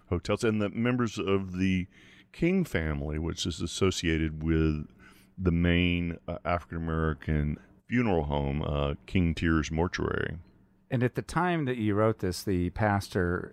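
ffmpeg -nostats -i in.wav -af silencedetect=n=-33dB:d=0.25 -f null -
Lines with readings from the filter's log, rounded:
silence_start: 1.84
silence_end: 2.40 | silence_duration: 0.56
silence_start: 4.83
silence_end: 5.39 | silence_duration: 0.57
silence_start: 7.54
silence_end: 7.92 | silence_duration: 0.37
silence_start: 10.34
silence_end: 10.92 | silence_duration: 0.58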